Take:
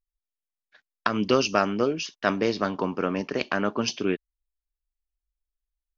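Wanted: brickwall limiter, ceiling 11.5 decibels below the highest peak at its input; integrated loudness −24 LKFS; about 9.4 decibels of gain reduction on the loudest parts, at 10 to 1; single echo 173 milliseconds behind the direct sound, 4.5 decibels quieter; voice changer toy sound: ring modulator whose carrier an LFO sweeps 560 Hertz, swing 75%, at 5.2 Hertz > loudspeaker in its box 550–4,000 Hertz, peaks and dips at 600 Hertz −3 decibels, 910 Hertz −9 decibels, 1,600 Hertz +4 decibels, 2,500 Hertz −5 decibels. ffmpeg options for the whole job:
ffmpeg -i in.wav -af "acompressor=threshold=-25dB:ratio=10,alimiter=limit=-22.5dB:level=0:latency=1,aecho=1:1:173:0.596,aeval=exprs='val(0)*sin(2*PI*560*n/s+560*0.75/5.2*sin(2*PI*5.2*n/s))':channel_layout=same,highpass=550,equalizer=frequency=600:width_type=q:width=4:gain=-3,equalizer=frequency=910:width_type=q:width=4:gain=-9,equalizer=frequency=1600:width_type=q:width=4:gain=4,equalizer=frequency=2500:width_type=q:width=4:gain=-5,lowpass=frequency=4000:width=0.5412,lowpass=frequency=4000:width=1.3066,volume=16dB" out.wav

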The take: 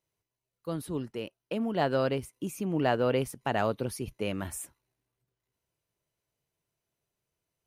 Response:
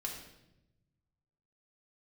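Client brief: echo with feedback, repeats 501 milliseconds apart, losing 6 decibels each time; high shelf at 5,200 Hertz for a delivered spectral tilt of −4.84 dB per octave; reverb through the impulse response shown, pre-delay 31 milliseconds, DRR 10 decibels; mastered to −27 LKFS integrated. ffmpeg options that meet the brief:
-filter_complex "[0:a]highshelf=frequency=5200:gain=7.5,aecho=1:1:501|1002|1503|2004|2505|3006:0.501|0.251|0.125|0.0626|0.0313|0.0157,asplit=2[link_01][link_02];[1:a]atrim=start_sample=2205,adelay=31[link_03];[link_02][link_03]afir=irnorm=-1:irlink=0,volume=-10dB[link_04];[link_01][link_04]amix=inputs=2:normalize=0,volume=3dB"

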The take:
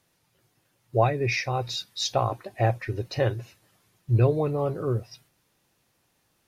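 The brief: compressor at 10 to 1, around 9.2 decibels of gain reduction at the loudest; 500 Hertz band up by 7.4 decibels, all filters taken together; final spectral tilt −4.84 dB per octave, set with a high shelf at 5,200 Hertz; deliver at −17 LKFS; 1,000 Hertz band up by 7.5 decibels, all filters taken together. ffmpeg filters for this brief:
ffmpeg -i in.wav -af "equalizer=frequency=500:width_type=o:gain=7,equalizer=frequency=1000:width_type=o:gain=7,highshelf=frequency=5200:gain=6,acompressor=threshold=-18dB:ratio=10,volume=8.5dB" out.wav

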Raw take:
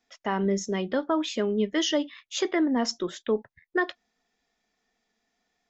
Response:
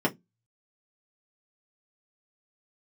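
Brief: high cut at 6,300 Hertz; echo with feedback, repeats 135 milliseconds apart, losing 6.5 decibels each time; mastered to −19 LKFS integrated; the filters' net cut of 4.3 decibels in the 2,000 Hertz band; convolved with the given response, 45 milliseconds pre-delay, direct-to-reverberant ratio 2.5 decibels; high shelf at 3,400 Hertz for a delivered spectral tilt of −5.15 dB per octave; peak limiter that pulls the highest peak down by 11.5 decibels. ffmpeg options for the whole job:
-filter_complex "[0:a]lowpass=6300,equalizer=frequency=2000:width_type=o:gain=-6,highshelf=frequency=3400:gain=4.5,alimiter=level_in=2.5dB:limit=-24dB:level=0:latency=1,volume=-2.5dB,aecho=1:1:135|270|405|540|675|810:0.473|0.222|0.105|0.0491|0.0231|0.0109,asplit=2[link_01][link_02];[1:a]atrim=start_sample=2205,adelay=45[link_03];[link_02][link_03]afir=irnorm=-1:irlink=0,volume=-14dB[link_04];[link_01][link_04]amix=inputs=2:normalize=0,volume=10.5dB"

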